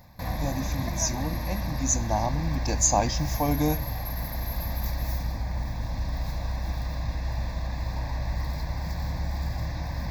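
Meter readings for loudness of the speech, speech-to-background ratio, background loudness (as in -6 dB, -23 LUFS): -28.0 LUFS, 4.0 dB, -32.0 LUFS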